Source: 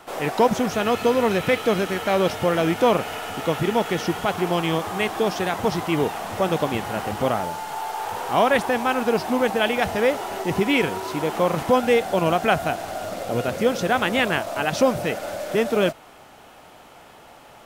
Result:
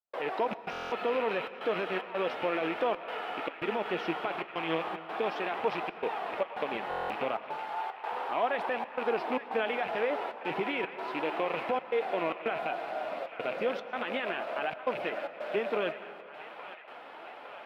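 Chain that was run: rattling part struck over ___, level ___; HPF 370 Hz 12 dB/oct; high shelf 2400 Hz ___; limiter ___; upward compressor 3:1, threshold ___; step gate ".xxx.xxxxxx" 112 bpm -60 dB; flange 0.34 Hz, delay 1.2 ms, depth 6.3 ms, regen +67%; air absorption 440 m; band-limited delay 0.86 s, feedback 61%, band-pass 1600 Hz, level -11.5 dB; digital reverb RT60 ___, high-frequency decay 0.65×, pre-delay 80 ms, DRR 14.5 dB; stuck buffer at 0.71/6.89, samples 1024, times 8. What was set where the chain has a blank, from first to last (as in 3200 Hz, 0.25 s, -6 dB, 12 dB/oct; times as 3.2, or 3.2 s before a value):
-30 dBFS, -20 dBFS, +6 dB, -13.5 dBFS, -33 dBFS, 1.8 s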